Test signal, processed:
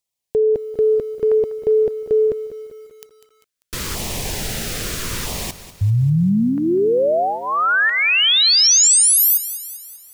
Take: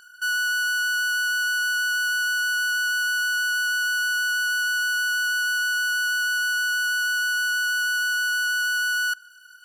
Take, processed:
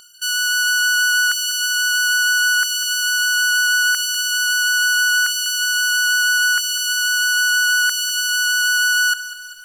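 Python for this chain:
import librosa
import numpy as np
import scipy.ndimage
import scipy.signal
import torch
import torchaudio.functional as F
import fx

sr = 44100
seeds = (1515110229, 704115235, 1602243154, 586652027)

y = fx.peak_eq(x, sr, hz=6800.0, db=3.0, octaves=1.5)
y = fx.filter_lfo_notch(y, sr, shape='saw_down', hz=0.76, low_hz=670.0, high_hz=1600.0, q=1.4)
y = fx.peak_eq(y, sr, hz=290.0, db=-5.5, octaves=0.29)
y = fx.echo_crushed(y, sr, ms=197, feedback_pct=55, bits=9, wet_db=-13.5)
y = y * librosa.db_to_amplitude(8.5)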